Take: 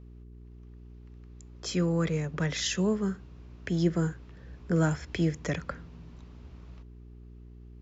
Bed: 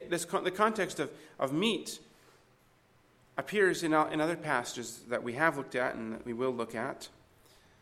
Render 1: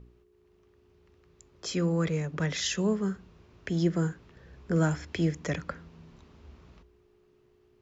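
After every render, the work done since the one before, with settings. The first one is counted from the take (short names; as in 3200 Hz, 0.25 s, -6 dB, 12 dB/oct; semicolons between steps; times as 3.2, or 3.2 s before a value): de-hum 60 Hz, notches 5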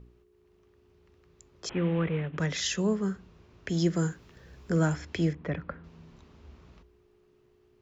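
1.69–2.38 CVSD 16 kbps; 3.69–4.76 high shelf 4800 Hz +10.5 dB; 5.33–5.84 air absorption 420 m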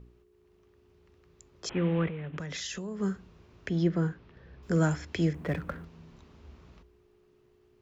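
2.07–3 compressor 12:1, threshold -33 dBFS; 3.69–4.63 air absorption 250 m; 5.34–5.85 G.711 law mismatch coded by mu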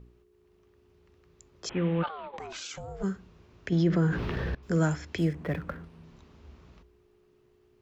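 2.02–3.02 ring modulator 1100 Hz -> 240 Hz; 3.72–4.55 fast leveller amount 70%; 5.18–6.04 decimation joined by straight lines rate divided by 3×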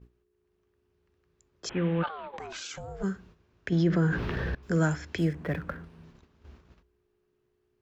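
gate -52 dBFS, range -10 dB; bell 1600 Hz +4.5 dB 0.29 oct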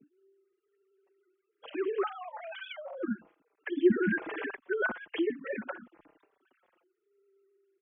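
sine-wave speech; endless flanger 4.7 ms -1.1 Hz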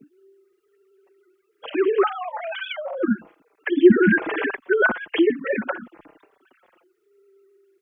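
gain +12 dB; limiter -3 dBFS, peak gain reduction 1.5 dB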